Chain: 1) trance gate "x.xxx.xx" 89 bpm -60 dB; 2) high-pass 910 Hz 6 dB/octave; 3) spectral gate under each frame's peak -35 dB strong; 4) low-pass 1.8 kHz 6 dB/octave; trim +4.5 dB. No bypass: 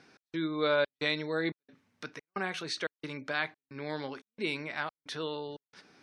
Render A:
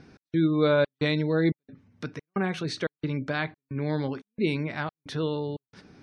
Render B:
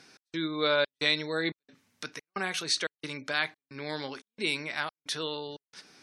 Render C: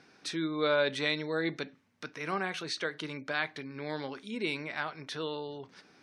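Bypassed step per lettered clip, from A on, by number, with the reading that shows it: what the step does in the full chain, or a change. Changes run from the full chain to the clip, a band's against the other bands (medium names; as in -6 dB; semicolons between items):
2, 125 Hz band +14.0 dB; 4, 8 kHz band +10.5 dB; 1, 8 kHz band +2.0 dB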